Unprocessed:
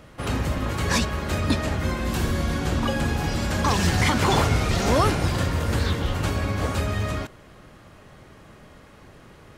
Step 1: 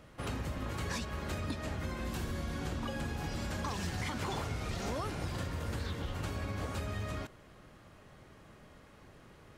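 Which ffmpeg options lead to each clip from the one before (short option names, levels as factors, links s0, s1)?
-af "acompressor=threshold=0.0562:ratio=6,volume=0.376"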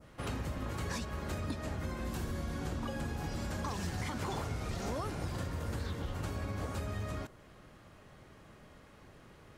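-af "adynamicequalizer=threshold=0.00158:dfrequency=2900:dqfactor=0.81:tfrequency=2900:tqfactor=0.81:attack=5:release=100:ratio=0.375:range=2:mode=cutabove:tftype=bell"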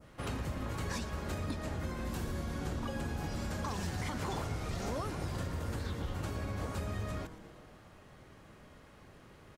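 -filter_complex "[0:a]asplit=8[s0][s1][s2][s3][s4][s5][s6][s7];[s1]adelay=115,afreqshift=-140,volume=0.2[s8];[s2]adelay=230,afreqshift=-280,volume=0.127[s9];[s3]adelay=345,afreqshift=-420,volume=0.0813[s10];[s4]adelay=460,afreqshift=-560,volume=0.0525[s11];[s5]adelay=575,afreqshift=-700,volume=0.0335[s12];[s6]adelay=690,afreqshift=-840,volume=0.0214[s13];[s7]adelay=805,afreqshift=-980,volume=0.0136[s14];[s0][s8][s9][s10][s11][s12][s13][s14]amix=inputs=8:normalize=0"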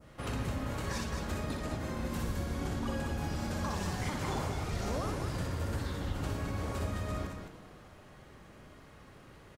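-af "aecho=1:1:61.22|212.8:0.631|0.501"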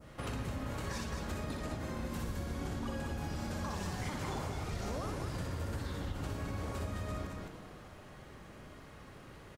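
-af "acompressor=threshold=0.00891:ratio=2,volume=1.26"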